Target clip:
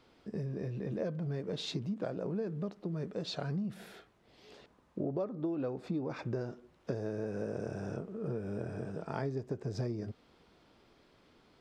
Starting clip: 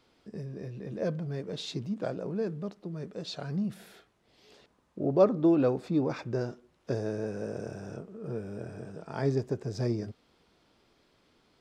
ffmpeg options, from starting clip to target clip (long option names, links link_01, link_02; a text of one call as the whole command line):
ffmpeg -i in.wav -af "highshelf=frequency=4200:gain=-7,acompressor=threshold=-35dB:ratio=12,volume=3dB" out.wav